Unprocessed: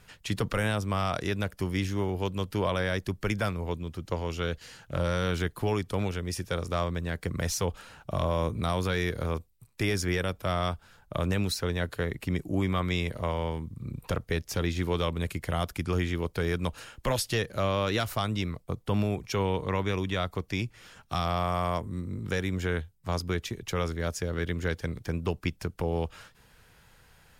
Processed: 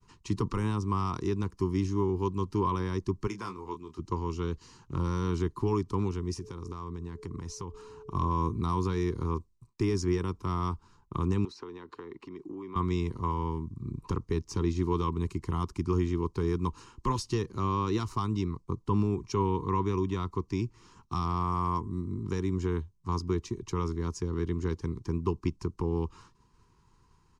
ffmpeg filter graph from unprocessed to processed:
-filter_complex "[0:a]asettb=1/sr,asplit=3[s0][s1][s2];[s0]atrim=end=3.274[s3];[s1]atrim=start=3.27:end=3.99,asetpts=PTS-STARTPTS,afade=t=in:d=0.004:c=qsin,afade=t=out:st=0.716:d=0.004:c=qsin,highpass=f=600:p=1,asplit=2[s4][s5];[s5]adelay=26,volume=0.422[s6];[s4][s6]amix=inputs=2:normalize=0,atrim=end_sample=31752[s7];[s2]atrim=start=3.986[s8];[s3][s7]acrossfade=d=0.004:c1=hsin:c2=qsin[s9];[s9][s8]acrossfade=d=0.004:c1=qsin:c2=hsin,asettb=1/sr,asplit=3[s10][s11][s12];[s10]atrim=end=6.384[s13];[s11]atrim=start=6.38:end=8.15,asetpts=PTS-STARTPTS,afade=t=in:d=0.004:c=qsin,afade=t=out:st=1.766:d=0.004:c=qsin,aeval=exprs='val(0)+0.00631*sin(2*PI*430*n/s)':c=same,acompressor=threshold=0.02:ratio=5:attack=3.2:release=140:knee=1:detection=peak[s14];[s12]atrim=start=8.146[s15];[s13][s14]acrossfade=d=0.004:c1=hsin:c2=qsin[s16];[s16][s15]acrossfade=d=0.004:c1=qsin:c2=hsin,asettb=1/sr,asplit=3[s17][s18][s19];[s17]atrim=end=11.454[s20];[s18]atrim=start=11.45:end=12.76,asetpts=PTS-STARTPTS,afade=t=in:d=0.004:c=qsin,afade=t=out:st=1.306:d=0.004:c=qsin,acompressor=threshold=0.0282:ratio=10:attack=3.2:release=140:knee=1:detection=peak,acrossover=split=260 4500:gain=0.0891 1 0.141[s21][s22][s23];[s21][s22][s23]amix=inputs=3:normalize=0[s24];[s19]atrim=start=12.756[s25];[s20][s24]acrossfade=d=0.004:c1=hsin:c2=qsin[s26];[s26][s25]acrossfade=d=0.004:c1=qsin:c2=hsin,bandreject=f=3400:w=11,agate=range=0.0224:threshold=0.00224:ratio=3:detection=peak,firequalizer=gain_entry='entry(190,0);entry(380,5);entry(590,-25);entry(1000,7);entry(1500,-14);entry(6100,-3);entry(14000,-28)':delay=0.05:min_phase=1"

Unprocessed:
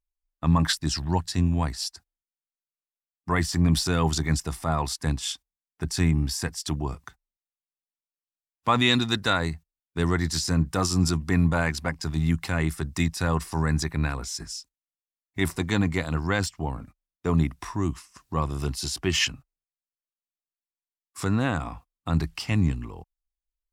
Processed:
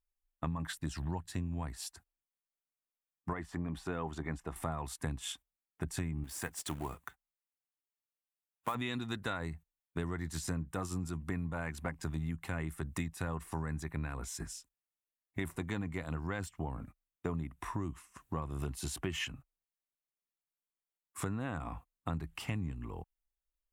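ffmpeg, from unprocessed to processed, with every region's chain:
-filter_complex "[0:a]asettb=1/sr,asplit=3[s0][s1][s2];[s0]atrim=end=3.334[s3];[s1]atrim=start=3.33:end=4.56,asetpts=PTS-STARTPTS,afade=t=in:d=0.004:c=qsin,afade=t=out:st=1.226:d=0.004:c=qsin,lowpass=f=1200:p=1,equalizer=f=100:t=o:w=2.4:g=-11.5[s4];[s2]atrim=start=4.556[s5];[s3][s4]acrossfade=d=0.004:c1=hsin:c2=qsin[s6];[s6][s5]acrossfade=d=0.004:c1=qsin:c2=hsin,asettb=1/sr,asplit=3[s7][s8][s9];[s7]atrim=end=6.244[s10];[s8]atrim=start=6.24:end=8.75,asetpts=PTS-STARTPTS,afade=t=in:d=0.004:c=qsin,afade=t=out:st=2.506:d=0.004:c=qsin,lowshelf=f=310:g=-10.5,acrusher=bits=3:mode=log:mix=0:aa=0.000001[s11];[s9]atrim=start=8.746[s12];[s10][s11]acrossfade=d=0.004:c1=hsin:c2=qsin[s13];[s13][s12]acrossfade=d=0.004:c1=qsin:c2=hsin,equalizer=f=5000:t=o:w=0.75:g=-14,acompressor=threshold=0.0282:ratio=12,volume=0.794"

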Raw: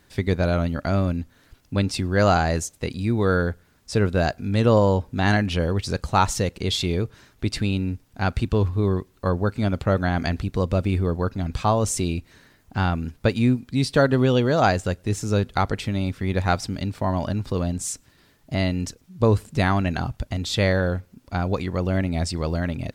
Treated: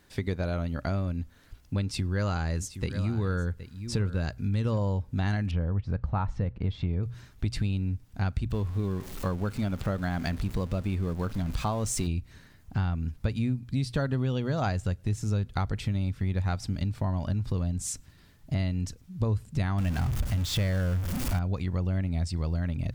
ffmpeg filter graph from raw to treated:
-filter_complex "[0:a]asettb=1/sr,asplit=3[s0][s1][s2];[s0]atrim=end=1.834[s3];[s1]atrim=start=1.83:end=4.78,asetpts=PTS-STARTPTS,afade=t=in:d=0.004:c=qsin,afade=t=out:st=2.946:d=0.004:c=qsin,equalizer=f=700:w=6:g=-9.5,aecho=1:1:768:0.168,atrim=end_sample=130095[s4];[s2]atrim=start=4.776[s5];[s3][s4]acrossfade=d=0.004:c1=hsin:c2=qsin[s6];[s6][s5]acrossfade=d=0.004:c1=qsin:c2=hsin,asettb=1/sr,asplit=3[s7][s8][s9];[s7]atrim=end=5.514[s10];[s8]atrim=start=5.51:end=7.03,asetpts=PTS-STARTPTS,afade=t=in:d=0.004:c=qsin,afade=t=out:st=1.516:d=0.004:c=qsin,lowpass=1600,equalizer=f=380:w=6:g=-5.5[s11];[s9]atrim=start=7.026[s12];[s10][s11]acrossfade=d=0.004:c1=hsin:c2=qsin[s13];[s13][s12]acrossfade=d=0.004:c1=qsin:c2=hsin,asettb=1/sr,asplit=3[s14][s15][s16];[s14]atrim=end=8.504[s17];[s15]atrim=start=8.5:end=12.07,asetpts=PTS-STARTPTS,afade=t=in:d=0.004:c=qsin,afade=t=out:st=3.566:d=0.004:c=qsin,aeval=exprs='val(0)+0.5*0.0224*sgn(val(0))':c=same,equalizer=f=78:t=o:w=1.5:g=-9.5[s18];[s16]atrim=start=12.066[s19];[s17][s18]acrossfade=d=0.004:c1=hsin:c2=qsin[s20];[s20][s19]acrossfade=d=0.004:c1=qsin:c2=hsin,asettb=1/sr,asplit=3[s21][s22][s23];[s21]atrim=end=19.784[s24];[s22]atrim=start=19.78:end=21.39,asetpts=PTS-STARTPTS,afade=t=in:d=0.004:c=qsin,afade=t=out:st=1.606:d=0.004:c=qsin,aeval=exprs='val(0)+0.5*0.075*sgn(val(0))':c=same,equalizer=f=4000:w=7.2:g=-3.5[s25];[s23]atrim=start=21.386[s26];[s24][s25]acrossfade=d=0.004:c1=hsin:c2=qsin[s27];[s27][s26]acrossfade=d=0.004:c1=qsin:c2=hsin,bandreject=f=60:t=h:w=6,bandreject=f=120:t=h:w=6,asubboost=boost=3:cutoff=190,acompressor=threshold=0.0708:ratio=4,volume=0.708"

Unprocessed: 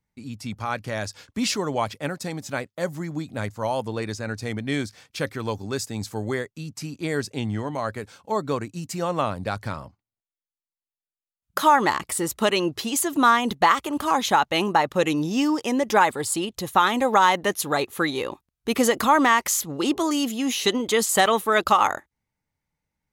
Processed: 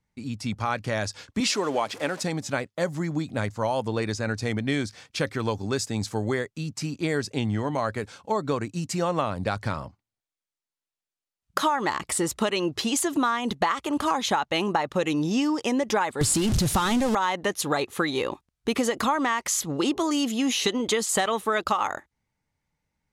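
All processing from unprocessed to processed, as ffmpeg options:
-filter_complex "[0:a]asettb=1/sr,asplit=3[s0][s1][s2];[s0]atrim=end=1.404[s3];[s1]atrim=start=1.4:end=2.23,asetpts=PTS-STARTPTS,afade=t=in:d=0.004:c=qsin,afade=t=out:st=0.826:d=0.004:c=qsin,aeval=exprs='val(0)+0.5*0.0141*sgn(val(0))':c=same,highpass=270[s4];[s2]atrim=start=2.226[s5];[s3][s4]acrossfade=d=0.004:c1=hsin:c2=qsin[s6];[s6][s5]acrossfade=d=0.004:c1=qsin:c2=hsin,asettb=1/sr,asplit=3[s7][s8][s9];[s7]atrim=end=16.214[s10];[s8]atrim=start=16.21:end=17.15,asetpts=PTS-STARTPTS,afade=t=in:d=0.004:c=qsin,afade=t=out:st=0.936:d=0.004:c=qsin,aeval=exprs='val(0)+0.5*0.0891*sgn(val(0))':c=same,bass=f=250:g=14,treble=f=4000:g=7[s11];[s9]atrim=start=17.146[s12];[s10][s11]acrossfade=d=0.004:c1=hsin:c2=qsin[s13];[s13][s12]acrossfade=d=0.004:c1=qsin:c2=hsin,lowpass=9300,acompressor=threshold=0.0631:ratio=6,volume=1.41"

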